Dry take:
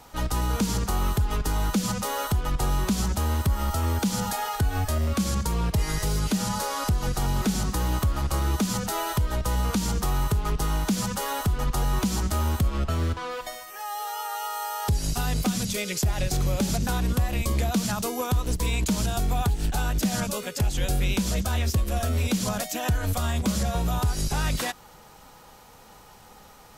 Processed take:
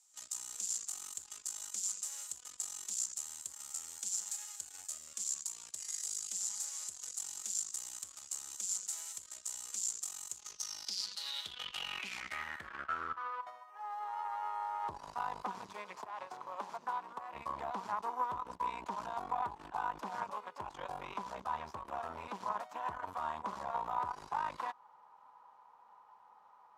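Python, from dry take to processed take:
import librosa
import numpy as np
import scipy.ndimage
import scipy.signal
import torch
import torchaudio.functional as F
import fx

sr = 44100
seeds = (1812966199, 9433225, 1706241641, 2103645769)

y = fx.highpass(x, sr, hz=270.0, slope=12, at=(15.95, 17.34))
y = fx.cheby_harmonics(y, sr, harmonics=(4, 7), levels_db=(-13, -25), full_scale_db=-15.5)
y = fx.filter_sweep_bandpass(y, sr, from_hz=7300.0, to_hz=990.0, start_s=10.29, end_s=13.54, q=6.7)
y = fx.over_compress(y, sr, threshold_db=-45.0, ratio=-1.0, at=(11.23, 12.42), fade=0.02)
y = y * 10.0 ** (3.0 / 20.0)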